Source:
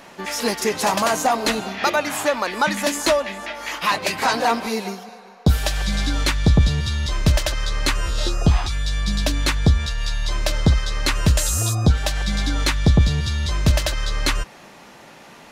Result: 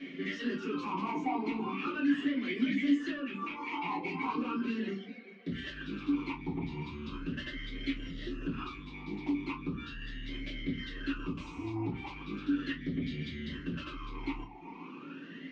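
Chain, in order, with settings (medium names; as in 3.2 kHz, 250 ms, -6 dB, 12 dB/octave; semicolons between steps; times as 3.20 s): reverb removal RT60 0.72 s; in parallel at +0.5 dB: compression, threshold -25 dBFS, peak gain reduction 13.5 dB; on the sum: peak limiter -11.5 dBFS, peak gain reduction 7.5 dB; saturation -24.5 dBFS, distortion -9 dB; distance through air 150 m; reverberation RT60 0.30 s, pre-delay 3 ms, DRR -7 dB; talking filter i-u 0.38 Hz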